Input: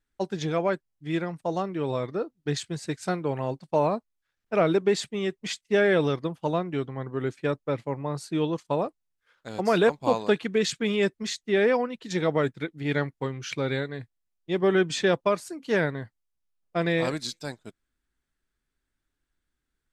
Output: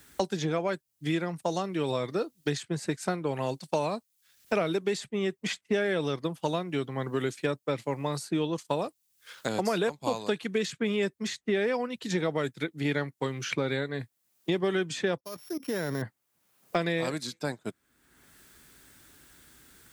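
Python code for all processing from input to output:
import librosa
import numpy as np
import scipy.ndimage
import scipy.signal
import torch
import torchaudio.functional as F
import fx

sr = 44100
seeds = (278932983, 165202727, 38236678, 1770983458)

y = fx.chain(x, sr, fx.sample_sort(block=8),
    fx.level_steps(step_db=19), at=(15.18, 16.02))
y = scipy.signal.sosfilt(scipy.signal.butter(2, 86.0, 'highpass', fs=sr, output='sos'), y)
y = fx.high_shelf(y, sr, hz=7300.0, db=11.0)
y = fx.band_squash(y, sr, depth_pct=100)
y = y * 10.0 ** (-4.0 / 20.0)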